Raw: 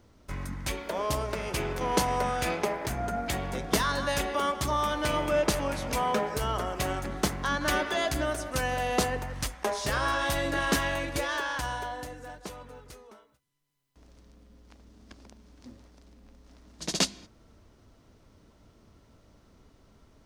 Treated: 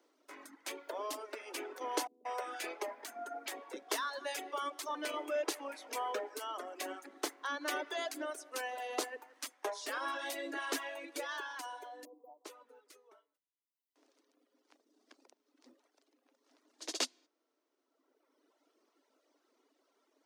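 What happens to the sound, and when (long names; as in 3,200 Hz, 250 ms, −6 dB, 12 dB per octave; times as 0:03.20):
0:02.07–0:04.95: multiband delay without the direct sound lows, highs 180 ms, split 310 Hz
0:12.05–0:12.45: linear-phase brick-wall band-stop 1,200–14,000 Hz
whole clip: Butterworth high-pass 270 Hz 72 dB per octave; reverb reduction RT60 1.7 s; level −8 dB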